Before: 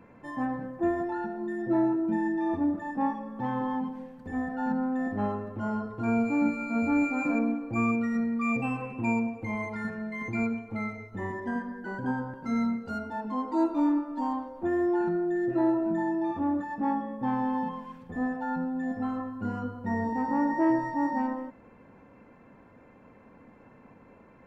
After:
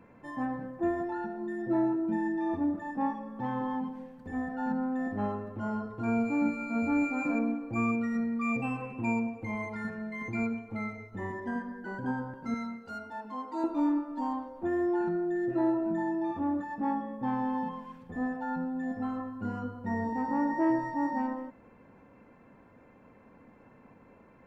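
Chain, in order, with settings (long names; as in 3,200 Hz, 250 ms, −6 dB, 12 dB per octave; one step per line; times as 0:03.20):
0:12.54–0:13.64: low-shelf EQ 490 Hz −10 dB
level −2.5 dB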